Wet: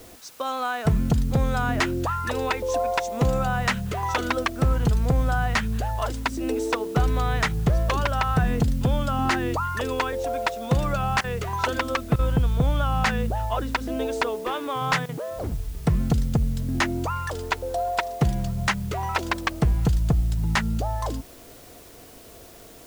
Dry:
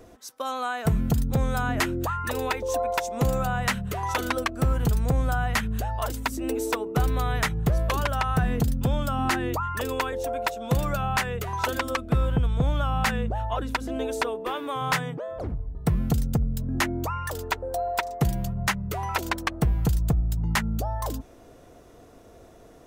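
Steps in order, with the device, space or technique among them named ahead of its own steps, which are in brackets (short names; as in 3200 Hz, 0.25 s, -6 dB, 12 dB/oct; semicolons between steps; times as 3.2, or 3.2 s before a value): worn cassette (LPF 6600 Hz; wow and flutter 19 cents; level dips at 11.21/12.16/15.06, 28 ms -15 dB; white noise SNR 26 dB); gain +2 dB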